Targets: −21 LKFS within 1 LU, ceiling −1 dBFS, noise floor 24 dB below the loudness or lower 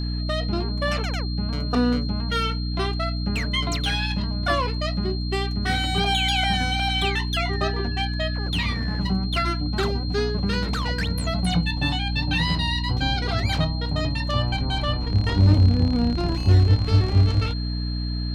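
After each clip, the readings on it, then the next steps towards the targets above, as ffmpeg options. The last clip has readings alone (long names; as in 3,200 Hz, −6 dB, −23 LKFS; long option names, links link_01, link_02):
mains hum 60 Hz; hum harmonics up to 300 Hz; level of the hum −24 dBFS; interfering tone 4,200 Hz; level of the tone −35 dBFS; integrated loudness −23.5 LKFS; sample peak −7.0 dBFS; target loudness −21.0 LKFS
→ -af "bandreject=frequency=60:width_type=h:width=4,bandreject=frequency=120:width_type=h:width=4,bandreject=frequency=180:width_type=h:width=4,bandreject=frequency=240:width_type=h:width=4,bandreject=frequency=300:width_type=h:width=4"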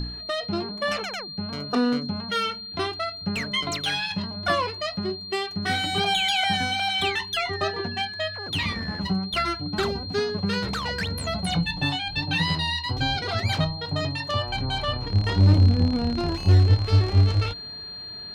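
mains hum none found; interfering tone 4,200 Hz; level of the tone −35 dBFS
→ -af "bandreject=frequency=4200:width=30"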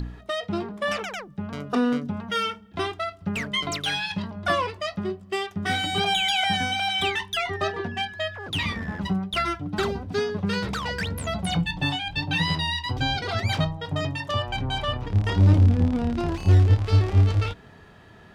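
interfering tone none found; integrated loudness −25.0 LKFS; sample peak −8.0 dBFS; target loudness −21.0 LKFS
→ -af "volume=4dB"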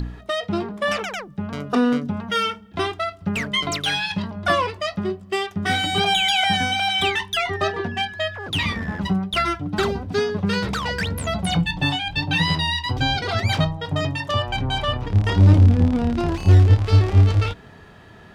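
integrated loudness −21.0 LKFS; sample peak −4.0 dBFS; background noise floor −45 dBFS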